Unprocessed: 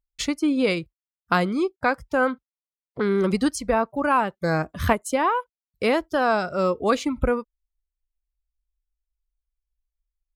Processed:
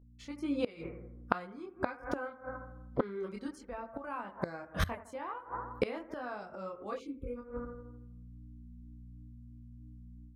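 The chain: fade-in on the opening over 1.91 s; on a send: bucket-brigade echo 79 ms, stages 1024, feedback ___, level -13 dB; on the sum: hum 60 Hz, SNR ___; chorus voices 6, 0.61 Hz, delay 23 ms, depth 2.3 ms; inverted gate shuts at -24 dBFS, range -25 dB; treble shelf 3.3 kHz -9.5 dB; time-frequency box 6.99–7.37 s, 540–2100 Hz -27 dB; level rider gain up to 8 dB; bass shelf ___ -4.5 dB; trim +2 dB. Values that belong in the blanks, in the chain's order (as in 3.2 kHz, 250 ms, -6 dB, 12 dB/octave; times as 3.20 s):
52%, 27 dB, 410 Hz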